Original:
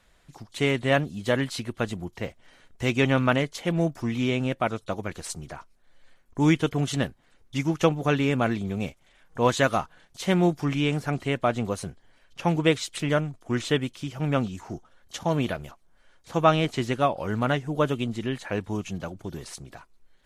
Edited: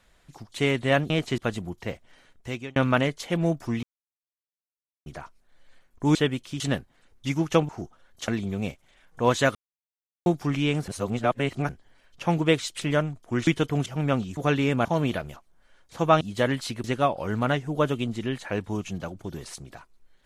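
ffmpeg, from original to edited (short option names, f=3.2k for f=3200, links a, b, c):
-filter_complex "[0:a]asplit=20[a][b][c][d][e][f][g][h][i][j][k][l][m][n][o][p][q][r][s][t];[a]atrim=end=1.102[u];[b]atrim=start=16.558:end=16.842[v];[c]atrim=start=1.728:end=3.11,asetpts=PTS-STARTPTS,afade=t=out:st=0.522:d=0.86:c=qsin[w];[d]atrim=start=3.11:end=4.18,asetpts=PTS-STARTPTS,afade=t=in:d=0.004:c=hsin,afade=t=out:st=1.066:d=0.004:c=hsin[x];[e]atrim=start=4.18:end=5.41,asetpts=PTS-STARTPTS,volume=0[y];[f]atrim=start=5.41:end=6.502,asetpts=PTS-STARTPTS,afade=t=in:d=0.004:c=hsin[z];[g]atrim=start=13.648:end=14.102[aa];[h]atrim=start=6.888:end=7.982[ab];[i]atrim=start=14.608:end=15.202[ac];[j]atrim=start=8.458:end=9.73,asetpts=PTS-STARTPTS,afade=t=out:st=1.268:d=0.004:c=hsin[ad];[k]atrim=start=9.73:end=10.44,asetpts=PTS-STARTPTS,volume=0[ae];[l]atrim=start=10.44:end=11.062,asetpts=PTS-STARTPTS,afade=t=in:d=0.004:c=hsin[af];[m]atrim=start=11.058:end=11.872,asetpts=PTS-STARTPTS,areverse[ag];[n]atrim=start=11.868:end=13.652[ah];[o]atrim=start=6.498:end=6.892[ai];[p]atrim=start=14.098:end=14.612[aj];[q]atrim=start=7.978:end=8.462[ak];[r]atrim=start=15.198:end=16.562[al];[s]atrim=start=1.098:end=1.732[am];[t]atrim=start=16.838[an];[u][v]acrossfade=d=0.004:c1=hsin:c2=hsin[ao];[w][x][y][z]concat=n=4:v=0:a=1[ap];[ao][ap]acrossfade=d=0.004:c1=hsin:c2=hsin[aq];[aq][aa]acrossfade=d=0.004:c1=hsin:c2=hsin[ar];[ar][ab]acrossfade=d=0.004:c1=hsin:c2=hsin[as];[as][ac]acrossfade=d=0.004:c1=hsin:c2=hsin[at];[ad][ae][af]concat=n=3:v=0:a=1[au];[at][au]acrossfade=d=0.004:c1=hsin:c2=hsin[av];[av][ag]acrossfade=d=0.004:c1=hsin:c2=hsin[aw];[aw][ah]acrossfade=d=0.004:c1=hsin:c2=hsin[ax];[ax][ai]acrossfade=d=0.004:c1=hsin:c2=hsin[ay];[ay][aj]acrossfade=d=0.004:c1=hsin:c2=hsin[az];[az][ak]acrossfade=d=0.004:c1=hsin:c2=hsin[ba];[ba][al]acrossfade=d=0.004:c1=hsin:c2=hsin[bb];[bb][am]acrossfade=d=0.004:c1=hsin:c2=hsin[bc];[bc][an]acrossfade=d=0.004:c1=hsin:c2=hsin"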